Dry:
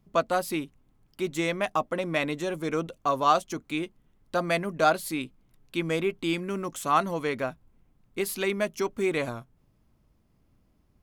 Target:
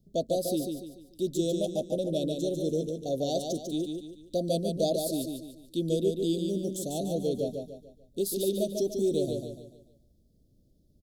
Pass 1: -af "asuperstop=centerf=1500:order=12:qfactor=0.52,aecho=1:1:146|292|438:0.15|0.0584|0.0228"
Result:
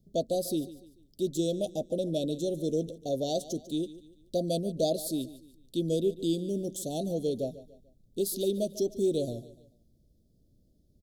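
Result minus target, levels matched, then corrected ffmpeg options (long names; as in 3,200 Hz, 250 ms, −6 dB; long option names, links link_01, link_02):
echo-to-direct −11.5 dB
-af "asuperstop=centerf=1500:order=12:qfactor=0.52,aecho=1:1:146|292|438|584|730:0.562|0.219|0.0855|0.0334|0.013"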